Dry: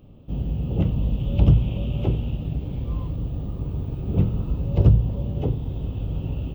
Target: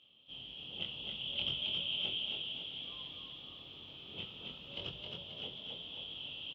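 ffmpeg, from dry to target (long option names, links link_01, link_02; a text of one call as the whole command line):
ffmpeg -i in.wav -filter_complex "[0:a]bandpass=frequency=3200:width_type=q:width=13:csg=0,asplit=2[link_01][link_02];[link_02]adelay=23,volume=-3dB[link_03];[link_01][link_03]amix=inputs=2:normalize=0,asplit=8[link_04][link_05][link_06][link_07][link_08][link_09][link_10][link_11];[link_05]adelay=267,afreqshift=34,volume=-3.5dB[link_12];[link_06]adelay=534,afreqshift=68,volume=-8.9dB[link_13];[link_07]adelay=801,afreqshift=102,volume=-14.2dB[link_14];[link_08]adelay=1068,afreqshift=136,volume=-19.6dB[link_15];[link_09]adelay=1335,afreqshift=170,volume=-24.9dB[link_16];[link_10]adelay=1602,afreqshift=204,volume=-30.3dB[link_17];[link_11]adelay=1869,afreqshift=238,volume=-35.6dB[link_18];[link_04][link_12][link_13][link_14][link_15][link_16][link_17][link_18]amix=inputs=8:normalize=0,volume=14.5dB" out.wav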